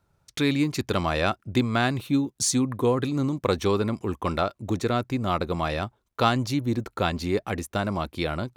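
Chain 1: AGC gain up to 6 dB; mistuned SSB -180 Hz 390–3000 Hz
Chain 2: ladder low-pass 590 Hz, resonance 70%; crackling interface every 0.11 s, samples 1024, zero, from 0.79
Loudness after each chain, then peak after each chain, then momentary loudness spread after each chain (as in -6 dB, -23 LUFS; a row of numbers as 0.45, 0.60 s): -25.0, -34.5 LUFS; -4.5, -15.5 dBFS; 11, 7 LU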